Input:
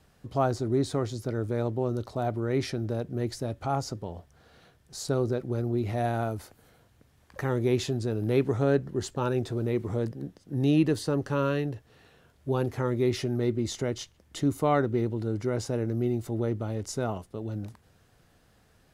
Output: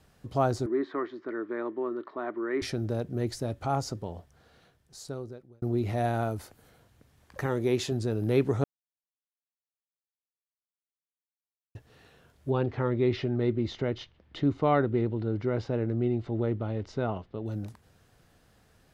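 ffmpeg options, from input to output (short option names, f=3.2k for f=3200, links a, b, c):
-filter_complex "[0:a]asettb=1/sr,asplit=3[a][b][c];[a]atrim=end=0.664[d];[b]atrim=start=0.66:end=2.62,asetpts=PTS-STARTPTS,afade=t=in:d=0.004:c=qsin,afade=t=out:st=1.956:d=0.004:c=qsin,highpass=f=290:w=0.5412,highpass=f=290:w=1.3066,equalizer=f=340:t=q:w=4:g=4,equalizer=f=500:t=q:w=4:g=-10,equalizer=f=760:t=q:w=4:g=-9,equalizer=f=1.1k:t=q:w=4:g=7,equalizer=f=1.8k:t=q:w=4:g=8,equalizer=f=2.6k:t=q:w=4:g=-6,lowpass=f=2.7k:w=0.5412,lowpass=f=2.7k:w=1.3066[e];[c]atrim=start=2.616[f];[d][e]acrossfade=d=0.004:c1=hsin:c2=qsin[g];[g][f]acrossfade=d=0.004:c1=qsin:c2=hsin,asettb=1/sr,asplit=3[h][i][j];[h]atrim=end=7.464[k];[i]atrim=start=7.46:end=7.92,asetpts=PTS-STARTPTS,afade=t=in:d=0.004:c=qsin,afade=t=out:st=0.456:d=0.004:c=qsin,lowshelf=f=110:g=-10[l];[j]atrim=start=7.916[m];[k][l]acrossfade=d=0.004:c1=hsin:c2=qsin[n];[n][m]acrossfade=d=0.004:c1=qsin:c2=hsin,asettb=1/sr,asplit=3[o][p][q];[o]atrim=end=12.504[r];[p]atrim=start=12.5:end=17.46,asetpts=PTS-STARTPTS,afade=t=in:d=0.004:c=qsin,afade=t=out:st=4.956:d=0.004:c=qsin,lowpass=f=3.9k:w=0.5412,lowpass=f=3.9k:w=1.3066[s];[q]atrim=start=17.456[t];[r][s]acrossfade=d=0.004:c1=hsin:c2=qsin[u];[u][t]acrossfade=d=0.004:c1=qsin:c2=hsin,asplit=4[v][w][x][y];[v]atrim=end=5.62,asetpts=PTS-STARTPTS,afade=t=out:st=4.05:d=1.57[z];[w]atrim=start=5.62:end=8.64,asetpts=PTS-STARTPTS,afade=t=in:d=0.004:c=hsin,afade=t=out:st=3.016:d=0.004:c=hsin[aa];[x]atrim=start=8.64:end=11.75,asetpts=PTS-STARTPTS,volume=0[ab];[y]atrim=start=11.75,asetpts=PTS-STARTPTS,afade=t=in:d=0.004:c=hsin[ac];[z][aa][ab][ac]concat=n=4:v=0:a=1"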